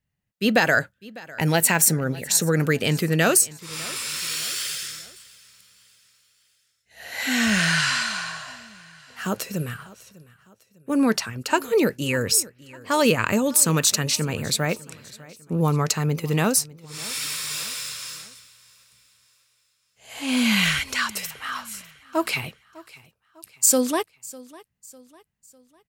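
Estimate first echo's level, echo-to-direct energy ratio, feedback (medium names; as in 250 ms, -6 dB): -21.0 dB, -20.0 dB, 44%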